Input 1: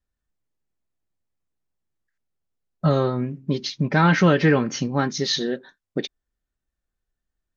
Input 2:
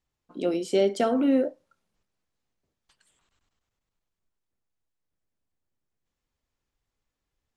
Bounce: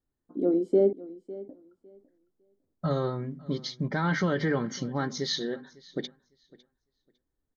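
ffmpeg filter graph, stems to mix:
-filter_complex "[0:a]bandreject=f=50:t=h:w=6,bandreject=f=100:t=h:w=6,bandreject=f=150:t=h:w=6,bandreject=f=200:t=h:w=6,bandreject=f=250:t=h:w=6,alimiter=limit=-11.5dB:level=0:latency=1:release=30,volume=-6.5dB,asplit=2[a][b];[b]volume=-22.5dB[c];[1:a]firequalizer=gain_entry='entry(160,0);entry(280,8);entry(520,-1);entry(2700,-22)':delay=0.05:min_phase=1,volume=-2dB,asplit=3[d][e][f];[d]atrim=end=0.93,asetpts=PTS-STARTPTS,afade=t=out:st=0.926:d=0.004:c=hsin[g];[e]atrim=start=0.93:end=1.49,asetpts=PTS-STARTPTS,volume=0[h];[f]atrim=start=1.49,asetpts=PTS-STARTPTS,afade=t=in:d=0.004:c=hsin[i];[g][h][i]concat=n=3:v=0:a=1,asplit=2[j][k];[k]volume=-18dB[l];[c][l]amix=inputs=2:normalize=0,aecho=0:1:554|1108|1662:1|0.19|0.0361[m];[a][j][m]amix=inputs=3:normalize=0,asuperstop=centerf=2600:order=4:qfactor=3.5,equalizer=f=5.7k:w=6:g=-3"

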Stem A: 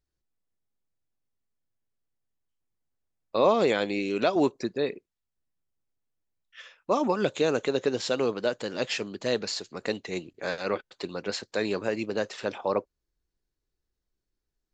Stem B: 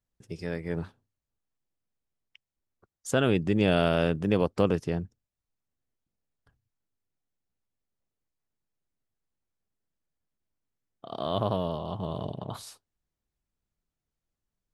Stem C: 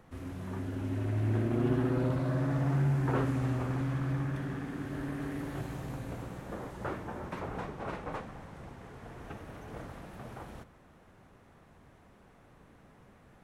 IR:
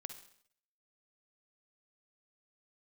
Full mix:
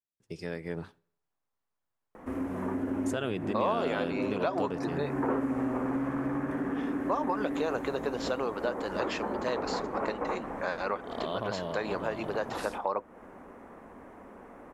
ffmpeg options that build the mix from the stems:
-filter_complex "[0:a]equalizer=f=1k:t=o:w=1.9:g=14.5,adelay=200,volume=-5dB[a];[1:a]agate=range=-14dB:threshold=-50dB:ratio=16:detection=peak,highpass=f=190:p=1,volume=-1dB,asplit=3[b][c][d];[c]volume=-15.5dB[e];[2:a]equalizer=f=125:t=o:w=1:g=-10,equalizer=f=250:t=o:w=1:g=11,equalizer=f=500:t=o:w=1:g=8,equalizer=f=1k:t=o:w=1:g=8,equalizer=f=2k:t=o:w=1:g=5,equalizer=f=4k:t=o:w=1:g=-9,adelay=2150,volume=2.5dB[f];[d]apad=whole_len=687442[g];[f][g]sidechaincompress=threshold=-29dB:ratio=8:attack=28:release=625[h];[3:a]atrim=start_sample=2205[i];[e][i]afir=irnorm=-1:irlink=0[j];[a][b][h][j]amix=inputs=4:normalize=0,acompressor=threshold=-31dB:ratio=2.5"

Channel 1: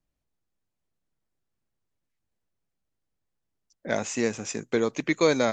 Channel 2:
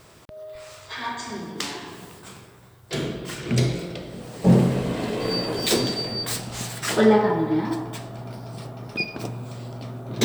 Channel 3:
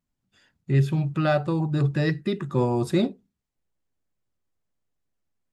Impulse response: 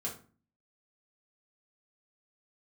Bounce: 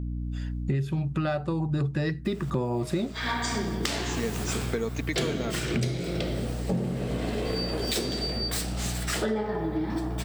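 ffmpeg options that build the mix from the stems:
-filter_complex "[0:a]aecho=1:1:4.4:0.43,volume=-13dB[a];[1:a]equalizer=f=1k:t=o:w=0.26:g=-6,adelay=2250,afade=t=out:st=6.24:d=0.37:silence=0.237137[b];[2:a]volume=2dB[c];[a][b][c]amix=inputs=3:normalize=0,dynaudnorm=f=130:g=5:m=12.5dB,aeval=exprs='val(0)+0.0316*(sin(2*PI*60*n/s)+sin(2*PI*2*60*n/s)/2+sin(2*PI*3*60*n/s)/3+sin(2*PI*4*60*n/s)/4+sin(2*PI*5*60*n/s)/5)':c=same,acompressor=threshold=-25dB:ratio=8"

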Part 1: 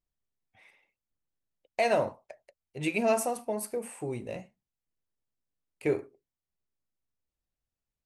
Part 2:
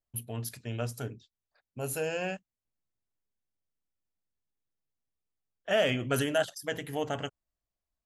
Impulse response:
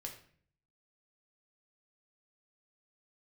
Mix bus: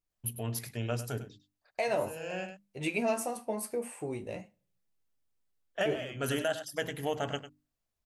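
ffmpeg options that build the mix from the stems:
-filter_complex "[0:a]flanger=delay=9.4:depth=4:regen=45:speed=0.43:shape=sinusoidal,volume=2.5dB,asplit=3[a][b][c];[a]atrim=end=0.72,asetpts=PTS-STARTPTS,afade=t=out:st=0.716:d=0.004:c=hsin[d];[b]atrim=start=0.72:end=1.77,asetpts=PTS-STARTPTS,volume=0[e];[c]atrim=start=1.77,asetpts=PTS-STARTPTS,afade=t=in:d=0.004:c=hsin[f];[d][e][f]concat=n=3:v=0:a=1,asplit=3[g][h][i];[h]volume=-18dB[j];[1:a]bandreject=f=50:t=h:w=6,bandreject=f=100:t=h:w=6,bandreject=f=150:t=h:w=6,bandreject=f=200:t=h:w=6,bandreject=f=250:t=h:w=6,bandreject=f=300:t=h:w=6,adelay=100,volume=1.5dB,asplit=2[k][l];[l]volume=-13dB[m];[i]apad=whole_len=359807[n];[k][n]sidechaincompress=threshold=-38dB:ratio=8:attack=49:release=564[o];[2:a]atrim=start_sample=2205[p];[j][p]afir=irnorm=-1:irlink=0[q];[m]aecho=0:1:100:1[r];[g][o][q][r]amix=inputs=4:normalize=0,alimiter=limit=-20dB:level=0:latency=1:release=411"

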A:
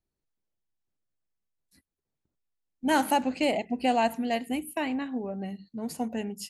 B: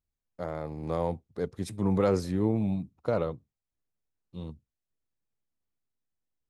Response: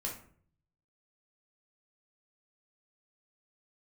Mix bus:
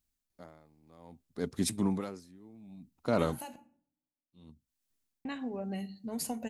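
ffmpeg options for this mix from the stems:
-filter_complex "[0:a]acompressor=threshold=-31dB:ratio=12,adelay=300,volume=-3dB,asplit=3[a][b][c];[a]atrim=end=3.56,asetpts=PTS-STARTPTS,afade=t=out:st=3.556:d=0.004:c=hsin[d];[b]atrim=start=3.56:end=5.25,asetpts=PTS-STARTPTS,volume=0[e];[c]atrim=start=5.25,asetpts=PTS-STARTPTS,afade=t=in:d=0.004:c=hsin[f];[d][e][f]concat=n=3:v=0:a=1,asplit=2[g][h];[h]volume=-13.5dB[i];[1:a]equalizer=f=100:t=o:w=0.33:g=-9,equalizer=f=250:t=o:w=0.33:g=8,equalizer=f=500:t=o:w=0.33:g=-6,aeval=exprs='val(0)*pow(10,-31*(0.5-0.5*cos(2*PI*0.61*n/s))/20)':c=same,volume=2.5dB,asplit=2[j][k];[k]apad=whole_len=299654[l];[g][l]sidechaincompress=threshold=-39dB:ratio=8:attack=16:release=480[m];[2:a]atrim=start_sample=2205[n];[i][n]afir=irnorm=-1:irlink=0[o];[m][j][o]amix=inputs=3:normalize=0,highshelf=f=3k:g=9.5"

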